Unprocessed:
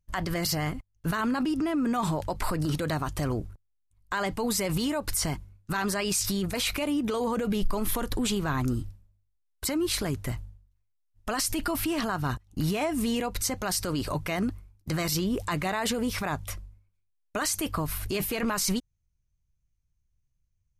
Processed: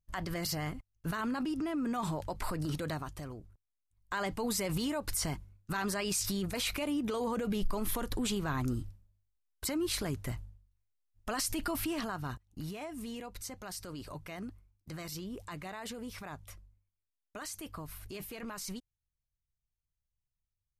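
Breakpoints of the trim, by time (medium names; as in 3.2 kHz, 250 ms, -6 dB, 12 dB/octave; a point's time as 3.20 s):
2.89 s -7 dB
3.39 s -17 dB
4.15 s -5.5 dB
11.82 s -5.5 dB
12.75 s -14 dB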